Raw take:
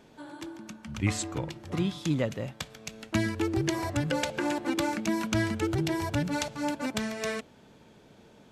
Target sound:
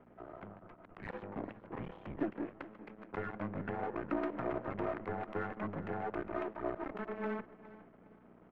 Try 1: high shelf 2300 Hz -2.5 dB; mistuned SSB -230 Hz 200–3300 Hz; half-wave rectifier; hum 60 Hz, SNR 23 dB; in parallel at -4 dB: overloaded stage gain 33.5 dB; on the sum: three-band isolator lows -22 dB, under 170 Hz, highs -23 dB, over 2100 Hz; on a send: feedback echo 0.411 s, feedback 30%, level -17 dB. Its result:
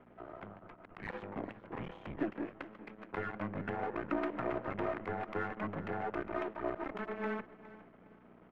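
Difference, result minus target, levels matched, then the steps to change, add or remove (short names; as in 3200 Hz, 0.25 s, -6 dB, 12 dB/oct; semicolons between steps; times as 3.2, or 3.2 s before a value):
4000 Hz band +3.5 dB
change: high shelf 2300 Hz -11.5 dB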